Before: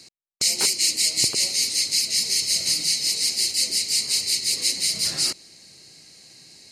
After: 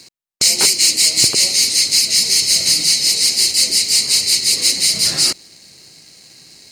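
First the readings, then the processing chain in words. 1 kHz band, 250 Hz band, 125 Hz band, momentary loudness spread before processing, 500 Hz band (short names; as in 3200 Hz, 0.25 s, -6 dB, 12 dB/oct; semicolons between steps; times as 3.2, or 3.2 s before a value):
n/a, +8.5 dB, +8.5 dB, 3 LU, +8.5 dB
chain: sample leveller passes 1; gain +5 dB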